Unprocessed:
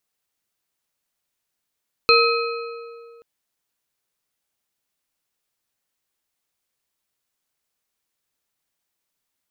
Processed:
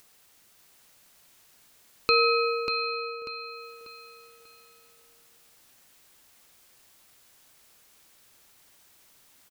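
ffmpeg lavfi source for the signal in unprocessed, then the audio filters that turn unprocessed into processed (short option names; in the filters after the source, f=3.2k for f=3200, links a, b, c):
-f lavfi -i "aevalsrc='0.178*pow(10,-3*t/2.23)*sin(2*PI*466*t)+0.178*pow(10,-3*t/1.645)*sin(2*PI*1284.8*t)+0.178*pow(10,-3*t/1.344)*sin(2*PI*2518.3*t)+0.178*pow(10,-3*t/1.156)*sin(2*PI*4162.8*t)':d=1.13:s=44100"
-filter_complex "[0:a]alimiter=limit=-10.5dB:level=0:latency=1:release=381,acompressor=mode=upward:threshold=-43dB:ratio=2.5,asplit=2[a][b];[b]aecho=0:1:591|1182|1773|2364:0.473|0.166|0.058|0.0203[c];[a][c]amix=inputs=2:normalize=0"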